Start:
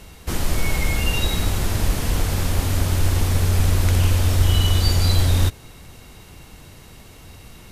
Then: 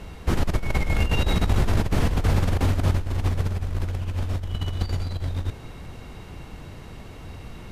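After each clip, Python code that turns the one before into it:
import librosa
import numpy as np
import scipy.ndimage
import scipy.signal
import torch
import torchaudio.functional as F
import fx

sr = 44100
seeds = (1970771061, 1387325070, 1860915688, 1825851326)

y = fx.over_compress(x, sr, threshold_db=-21.0, ratio=-0.5)
y = fx.lowpass(y, sr, hz=1800.0, slope=6)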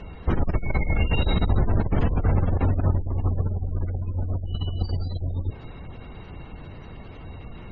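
y = fx.spec_gate(x, sr, threshold_db=-30, keep='strong')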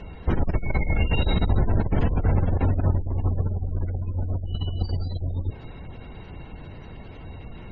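y = fx.notch(x, sr, hz=1200.0, q=8.7)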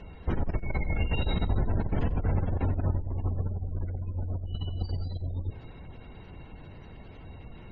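y = x + 10.0 ** (-16.0 / 20.0) * np.pad(x, (int(91 * sr / 1000.0), 0))[:len(x)]
y = F.gain(torch.from_numpy(y), -6.0).numpy()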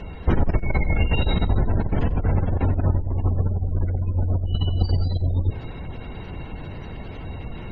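y = fx.rider(x, sr, range_db=10, speed_s=2.0)
y = F.gain(torch.from_numpy(y), 8.0).numpy()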